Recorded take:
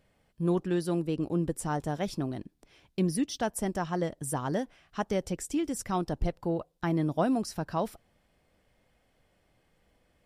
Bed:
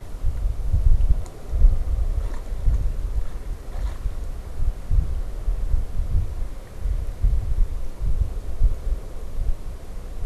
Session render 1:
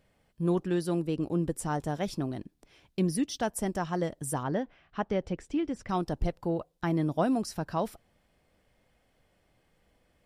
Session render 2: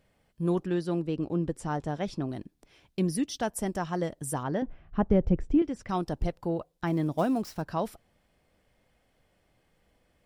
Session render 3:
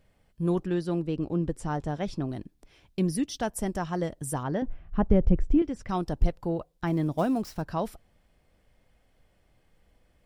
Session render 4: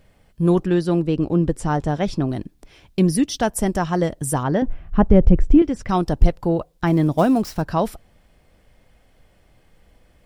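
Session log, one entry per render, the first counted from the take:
4.43–5.89 LPF 3100 Hz
0.66–2.29 air absorption 70 m; 4.62–5.62 tilt -4 dB/oct; 6.87–7.67 switching dead time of 0.052 ms
low shelf 71 Hz +10.5 dB
gain +9.5 dB; limiter -2 dBFS, peak gain reduction 3 dB

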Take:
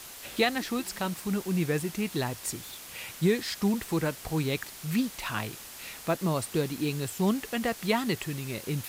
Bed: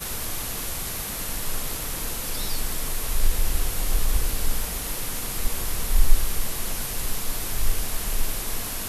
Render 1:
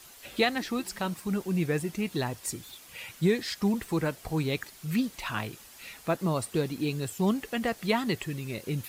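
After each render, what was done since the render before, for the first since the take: denoiser 8 dB, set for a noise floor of -45 dBFS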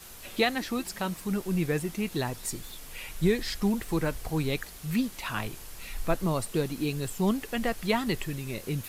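add bed -18 dB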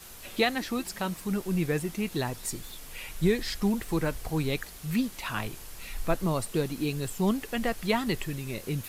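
nothing audible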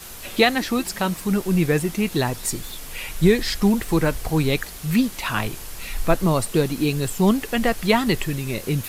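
gain +8.5 dB

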